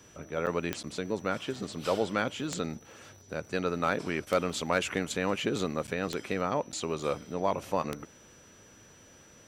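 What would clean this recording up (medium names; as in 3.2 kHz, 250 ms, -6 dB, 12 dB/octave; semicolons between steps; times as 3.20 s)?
de-click; band-stop 5.9 kHz, Q 30; interpolate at 0.46/0.83/5.87/6.72 s, 8.2 ms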